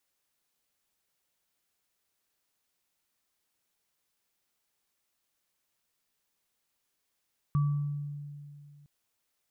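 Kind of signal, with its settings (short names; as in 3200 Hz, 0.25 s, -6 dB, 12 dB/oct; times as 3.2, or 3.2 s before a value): sine partials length 1.31 s, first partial 145 Hz, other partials 1150 Hz, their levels -14.5 dB, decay 2.47 s, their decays 0.72 s, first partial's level -22 dB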